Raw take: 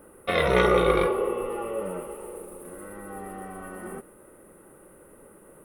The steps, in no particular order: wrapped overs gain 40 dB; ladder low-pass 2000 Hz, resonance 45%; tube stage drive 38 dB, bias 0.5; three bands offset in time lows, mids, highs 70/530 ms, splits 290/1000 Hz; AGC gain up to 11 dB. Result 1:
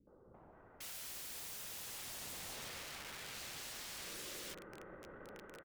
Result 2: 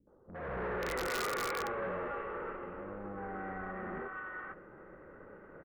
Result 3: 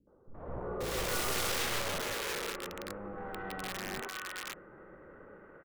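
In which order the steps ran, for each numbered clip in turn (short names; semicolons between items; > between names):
ladder low-pass > AGC > wrapped overs > three bands offset in time > tube stage; three bands offset in time > tube stage > ladder low-pass > wrapped overs > AGC; ladder low-pass > tube stage > wrapped overs > AGC > three bands offset in time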